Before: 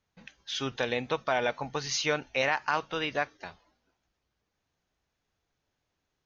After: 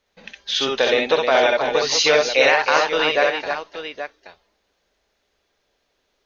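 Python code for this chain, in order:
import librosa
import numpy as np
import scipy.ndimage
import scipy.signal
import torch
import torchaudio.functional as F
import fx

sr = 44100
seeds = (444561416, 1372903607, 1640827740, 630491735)

y = fx.graphic_eq(x, sr, hz=(125, 500, 2000, 4000), db=(-12, 8, 3, 6))
y = fx.echo_multitap(y, sr, ms=(60, 65, 313, 827), db=(-6.0, -4.0, -7.0, -10.5))
y = y * librosa.db_to_amplitude(5.5)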